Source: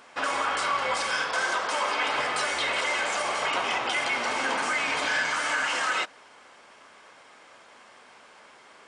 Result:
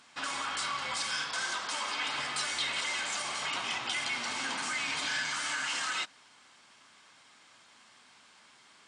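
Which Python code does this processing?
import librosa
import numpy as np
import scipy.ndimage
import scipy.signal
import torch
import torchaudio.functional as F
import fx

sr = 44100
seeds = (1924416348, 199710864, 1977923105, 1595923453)

y = fx.graphic_eq(x, sr, hz=(125, 250, 500, 4000, 8000), db=(6, 3, -9, 7, 7))
y = F.gain(torch.from_numpy(y), -8.5).numpy()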